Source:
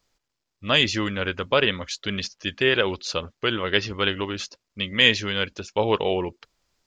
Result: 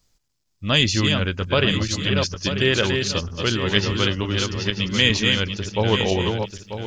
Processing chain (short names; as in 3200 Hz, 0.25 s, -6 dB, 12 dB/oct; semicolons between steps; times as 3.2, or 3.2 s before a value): regenerating reverse delay 0.47 s, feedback 53%, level -4.5 dB; tone controls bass +11 dB, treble +9 dB; 3.86–5.1 three-band squash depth 40%; gain -1.5 dB